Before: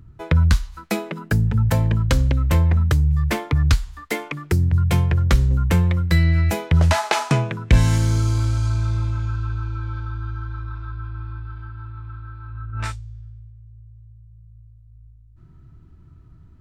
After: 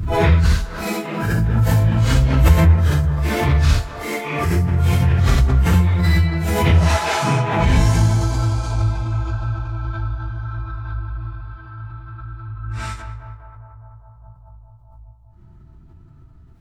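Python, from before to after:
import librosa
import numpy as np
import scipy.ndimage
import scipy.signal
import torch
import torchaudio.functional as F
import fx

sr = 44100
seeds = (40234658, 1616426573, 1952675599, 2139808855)

p1 = fx.phase_scramble(x, sr, seeds[0], window_ms=200)
p2 = fx.notch(p1, sr, hz=540.0, q=12.0)
p3 = p2 + fx.echo_banded(p2, sr, ms=204, feedback_pct=84, hz=720.0, wet_db=-7.5, dry=0)
p4 = fx.pre_swell(p3, sr, db_per_s=45.0)
y = F.gain(torch.from_numpy(p4), 1.0).numpy()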